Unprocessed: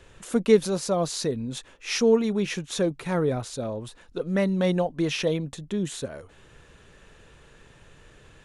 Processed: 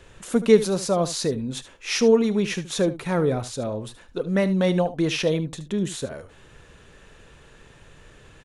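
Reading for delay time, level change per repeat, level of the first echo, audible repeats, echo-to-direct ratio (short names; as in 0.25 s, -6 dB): 74 ms, no steady repeat, -14.5 dB, 1, -14.5 dB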